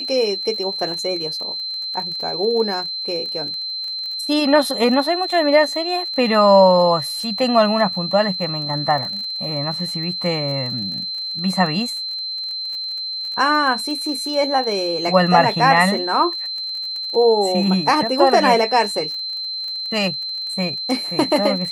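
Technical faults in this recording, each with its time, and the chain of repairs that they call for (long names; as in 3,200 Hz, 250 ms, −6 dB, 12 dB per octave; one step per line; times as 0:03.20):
surface crackle 34 per second −28 dBFS
whistle 4,100 Hz −24 dBFS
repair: click removal
notch filter 4,100 Hz, Q 30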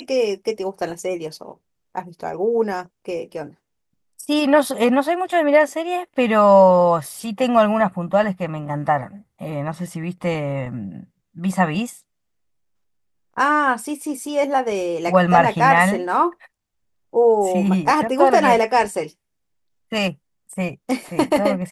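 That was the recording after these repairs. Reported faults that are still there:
none of them is left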